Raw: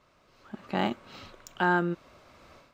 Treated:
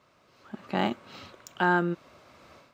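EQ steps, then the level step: HPF 80 Hz; +1.0 dB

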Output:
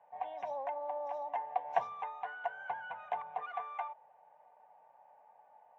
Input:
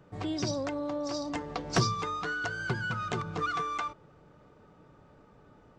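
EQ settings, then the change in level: ladder band-pass 880 Hz, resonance 65%; fixed phaser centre 1300 Hz, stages 6; +9.5 dB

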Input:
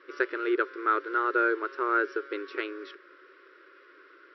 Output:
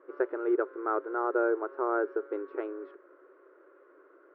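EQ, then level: synth low-pass 740 Hz, resonance Q 4.9; bell 440 Hz -2.5 dB 2.1 oct; 0.0 dB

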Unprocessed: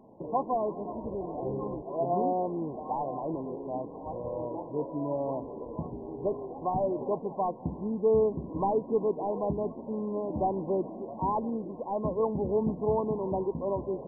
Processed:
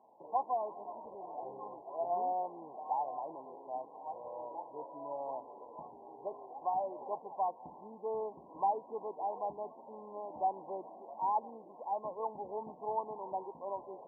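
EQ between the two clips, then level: band-pass 840 Hz, Q 3.7; 0.0 dB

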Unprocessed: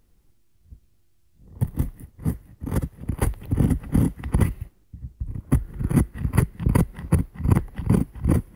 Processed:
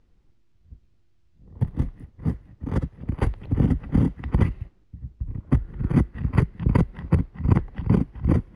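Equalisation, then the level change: air absorption 130 m; 0.0 dB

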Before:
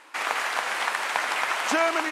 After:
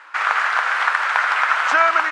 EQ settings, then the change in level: BPF 520–6000 Hz; bell 1400 Hz +13 dB 1 oct; 0.0 dB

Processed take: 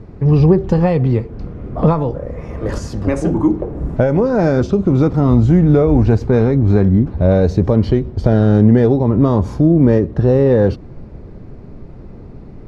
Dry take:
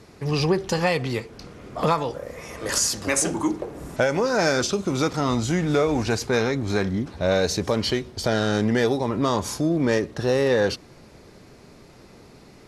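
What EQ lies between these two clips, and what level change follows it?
dynamic EQ 1800 Hz, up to -3 dB, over -33 dBFS, Q 0.76; tilt -4 dB/oct; high shelf 3700 Hz -11 dB; +3.5 dB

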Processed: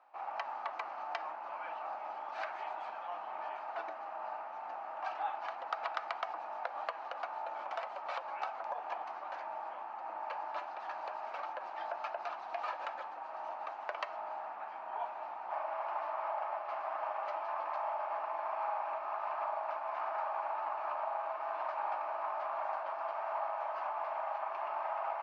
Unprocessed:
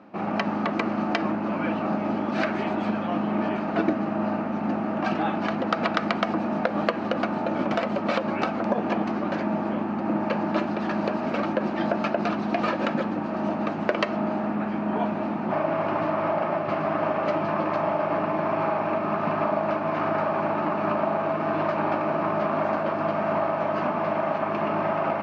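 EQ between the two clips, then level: ladder high-pass 730 Hz, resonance 55%; -5.5 dB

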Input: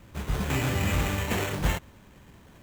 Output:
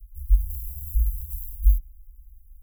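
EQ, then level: inverse Chebyshev band-stop 170–3600 Hz, stop band 70 dB; resonant low shelf 100 Hz +11.5 dB, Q 1.5; +6.5 dB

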